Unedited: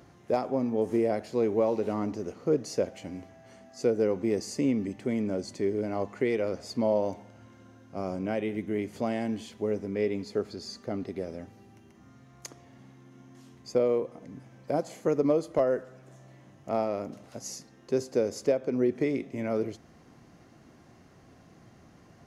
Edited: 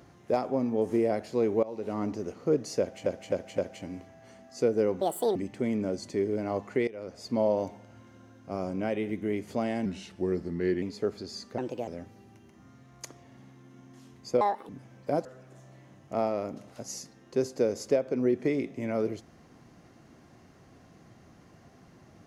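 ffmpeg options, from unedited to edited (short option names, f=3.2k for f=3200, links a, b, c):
-filter_complex "[0:a]asplit=15[a][b][c][d][e][f][g][h][i][j][k][l][m][n][o];[a]atrim=end=1.63,asetpts=PTS-STARTPTS,afade=t=out:st=1.626:d=0.004:c=hsin:silence=0.112202[p];[b]atrim=start=1.63:end=3.062,asetpts=PTS-STARTPTS,afade=t=in:d=0.42:silence=0.112202[q];[c]atrim=start=2.798:end=3.062[r];[d]atrim=start=2.798:end=3.062[s];[e]atrim=start=2.798:end=4.234[t];[f]atrim=start=4.23:end=4.81,asetpts=PTS-STARTPTS,asetrate=74088,aresample=44100[u];[g]atrim=start=4.806:end=6.33,asetpts=PTS-STARTPTS,afade=t=out:st=1.52:d=0.004:c=hsin:silence=0.105925[v];[h]atrim=start=6.33:end=9.314,asetpts=PTS-STARTPTS,afade=t=in:d=0.53:silence=0.105925[w];[i]atrim=start=9.31:end=10.15,asetpts=PTS-STARTPTS,asetrate=38367,aresample=44100,atrim=end_sample=42579,asetpts=PTS-STARTPTS[x];[j]atrim=start=10.146:end=10.914[y];[k]atrim=start=10.91:end=11.29,asetpts=PTS-STARTPTS,asetrate=56448,aresample=44100,atrim=end_sample=13092,asetpts=PTS-STARTPTS[z];[l]atrim=start=11.286:end=13.824[aa];[m]atrim=start=13.82:end=14.3,asetpts=PTS-STARTPTS,asetrate=74970,aresample=44100[ab];[n]atrim=start=14.296:end=14.862[ac];[o]atrim=start=15.808[ad];[p][q]concat=n=2:v=0:a=1[ae];[ae][r]acrossfade=d=0.004:c1=hsin:c2=hsin[af];[af][s]acrossfade=d=0.004:c1=hsin:c2=hsin[ag];[ag][t]acrossfade=d=0.004:c1=hsin:c2=hsin[ah];[ah][u]acrossfade=d=0.004:c1=hsin:c2=hsin[ai];[v][w]concat=n=2:v=0:a=1[aj];[ai][aj]acrossfade=d=0.004:c1=hsin:c2=hsin[ak];[ak][x]acrossfade=d=0.004:c1=hsin:c2=hsin[al];[al][y]acrossfade=d=0.004:c1=hsin:c2=hsin[am];[am][z]acrossfade=d=0.004:c1=hsin:c2=hsin[an];[an][aa]acrossfade=d=0.004:c1=hsin:c2=hsin[ao];[ao][ab]acrossfade=d=0.004:c1=hsin:c2=hsin[ap];[ap][ac]acrossfade=d=0.004:c1=hsin:c2=hsin[aq];[aq][ad]acrossfade=d=0.004:c1=hsin:c2=hsin"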